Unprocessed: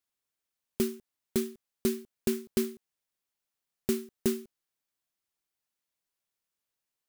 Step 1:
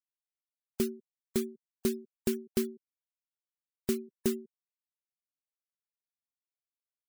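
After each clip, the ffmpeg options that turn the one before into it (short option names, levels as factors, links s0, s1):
-af "afftfilt=real='re*gte(hypot(re,im),0.00631)':imag='im*gte(hypot(re,im),0.00631)':win_size=1024:overlap=0.75,volume=0.841"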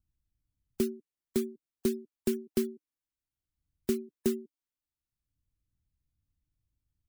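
-filter_complex "[0:a]equalizer=f=300:t=o:w=0.46:g=10.5,acrossover=split=110|2300[s0][s1][s2];[s0]acompressor=mode=upward:threshold=0.00447:ratio=2.5[s3];[s3][s1][s2]amix=inputs=3:normalize=0,volume=0.794"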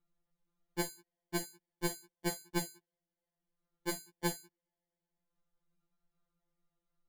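-af "acrusher=samples=34:mix=1:aa=0.000001,afftfilt=real='re*2.83*eq(mod(b,8),0)':imag='im*2.83*eq(mod(b,8),0)':win_size=2048:overlap=0.75,volume=1.5"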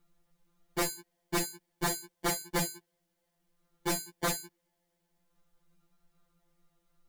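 -af "aeval=exprs='0.119*sin(PI/2*5.01*val(0)/0.119)':c=same,volume=0.501"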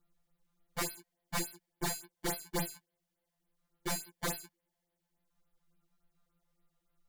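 -filter_complex "[0:a]asplit=2[s0][s1];[s1]acrusher=bits=4:dc=4:mix=0:aa=0.000001,volume=0.501[s2];[s0][s2]amix=inputs=2:normalize=0,afftfilt=real='re*(1-between(b*sr/1024,310*pow(7400/310,0.5+0.5*sin(2*PI*3.5*pts/sr))/1.41,310*pow(7400/310,0.5+0.5*sin(2*PI*3.5*pts/sr))*1.41))':imag='im*(1-between(b*sr/1024,310*pow(7400/310,0.5+0.5*sin(2*PI*3.5*pts/sr))/1.41,310*pow(7400/310,0.5+0.5*sin(2*PI*3.5*pts/sr))*1.41))':win_size=1024:overlap=0.75,volume=0.531"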